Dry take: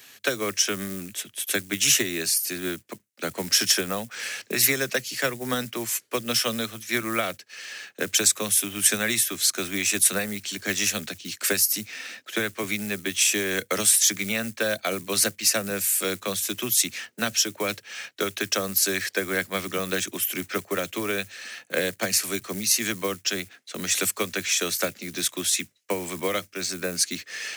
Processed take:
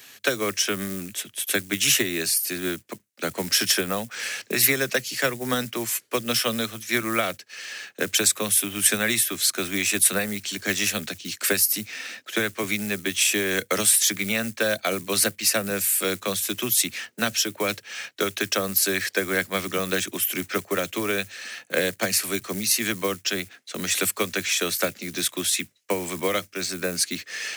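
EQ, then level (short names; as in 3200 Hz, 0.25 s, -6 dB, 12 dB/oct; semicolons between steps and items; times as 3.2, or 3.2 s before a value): dynamic EQ 6300 Hz, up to -5 dB, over -34 dBFS, Q 1.9; +2.0 dB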